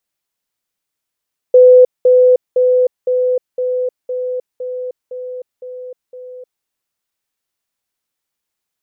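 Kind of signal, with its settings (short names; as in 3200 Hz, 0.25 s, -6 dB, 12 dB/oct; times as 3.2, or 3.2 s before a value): level ladder 503 Hz -2.5 dBFS, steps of -3 dB, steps 10, 0.31 s 0.20 s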